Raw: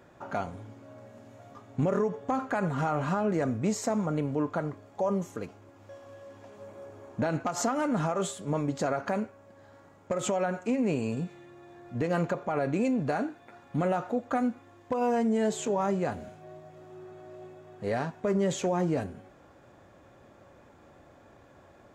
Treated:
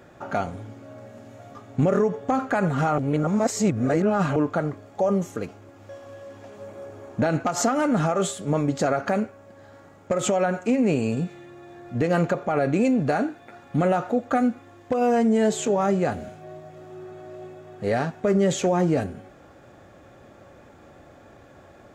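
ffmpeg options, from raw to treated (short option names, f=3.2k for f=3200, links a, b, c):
-filter_complex "[0:a]asplit=3[a][b][c];[a]atrim=end=2.982[d];[b]atrim=start=2.978:end=4.362,asetpts=PTS-STARTPTS,areverse[e];[c]atrim=start=4.358[f];[d][e]acrossfade=d=0.004:c1=hsin:c2=hsin[g];[g][f]acrossfade=d=0.004:c1=hsin:c2=hsin,bandreject=f=990:w=8.1,volume=6.5dB"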